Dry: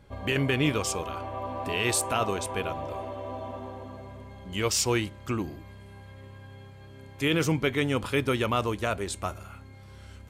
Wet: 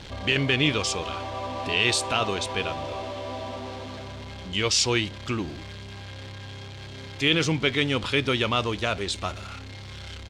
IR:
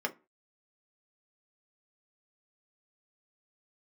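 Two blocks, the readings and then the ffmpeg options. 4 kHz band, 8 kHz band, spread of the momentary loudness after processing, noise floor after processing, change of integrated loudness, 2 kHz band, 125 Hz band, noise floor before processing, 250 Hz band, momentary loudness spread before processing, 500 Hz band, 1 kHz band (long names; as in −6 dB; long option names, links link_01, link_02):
+8.5 dB, +0.5 dB, 18 LU, −40 dBFS, +3.5 dB, +5.0 dB, +1.5 dB, −48 dBFS, +1.0 dB, 22 LU, +1.0 dB, +1.5 dB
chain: -af "aeval=exprs='val(0)+0.5*0.0112*sgn(val(0))':channel_layout=same,firequalizer=gain_entry='entry(1100,0);entry(3600,10);entry(14000,-20)':delay=0.05:min_phase=1"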